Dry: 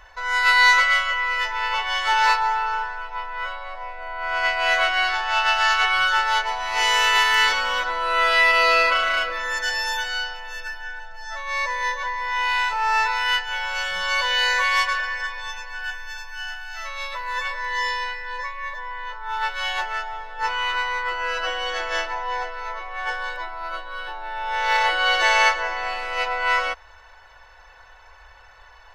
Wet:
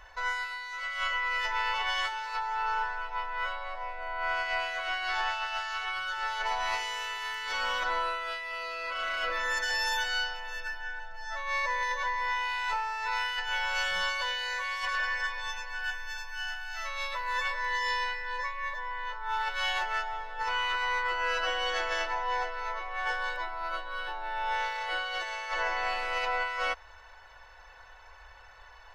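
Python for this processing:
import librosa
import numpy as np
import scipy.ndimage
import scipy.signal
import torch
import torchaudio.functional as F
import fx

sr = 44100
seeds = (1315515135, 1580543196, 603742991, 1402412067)

y = fx.peak_eq(x, sr, hz=9100.0, db=-4.5, octaves=1.9, at=(10.5, 11.83))
y = fx.over_compress(y, sr, threshold_db=-25.0, ratio=-1.0)
y = y * 10.0 ** (-6.5 / 20.0)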